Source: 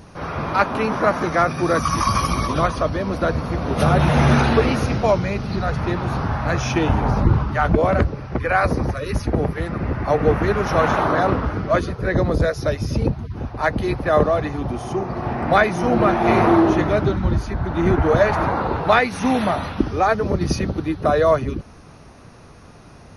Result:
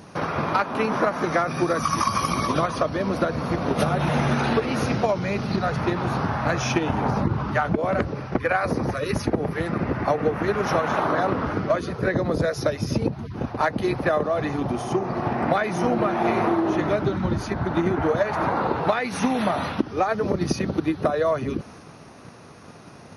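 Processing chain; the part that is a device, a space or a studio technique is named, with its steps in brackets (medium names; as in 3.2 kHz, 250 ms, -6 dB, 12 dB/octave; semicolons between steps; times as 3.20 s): high-pass 130 Hz 12 dB/octave; drum-bus smash (transient shaper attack +8 dB, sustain +3 dB; compression 6:1, threshold -18 dBFS, peak gain reduction 14 dB; saturation -7 dBFS, distortion -27 dB)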